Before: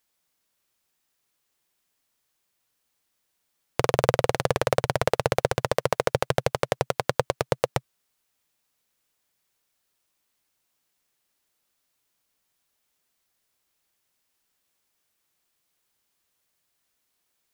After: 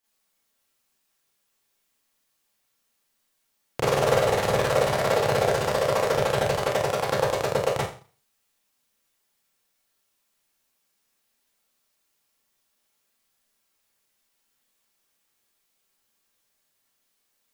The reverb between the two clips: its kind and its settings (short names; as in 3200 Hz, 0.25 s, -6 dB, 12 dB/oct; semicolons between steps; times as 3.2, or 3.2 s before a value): Schroeder reverb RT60 0.4 s, combs from 28 ms, DRR -9.5 dB; gain -7.5 dB